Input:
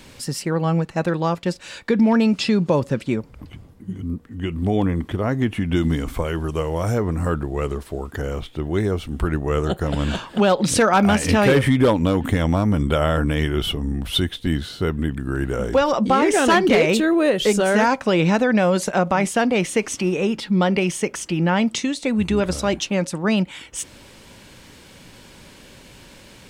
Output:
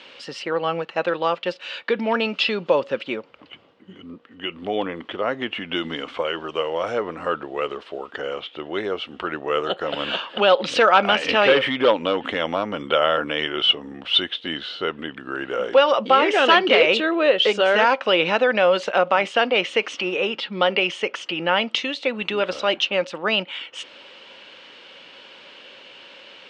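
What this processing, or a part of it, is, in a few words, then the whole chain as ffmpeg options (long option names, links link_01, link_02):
phone earpiece: -af "highpass=430,equalizer=frequency=530:width_type=q:width=4:gain=5,equalizer=frequency=1300:width_type=q:width=4:gain=4,equalizer=frequency=2900:width_type=q:width=4:gain=8,lowpass=frequency=3800:width=0.5412,lowpass=frequency=3800:width=1.3066,aemphasis=mode=production:type=50fm"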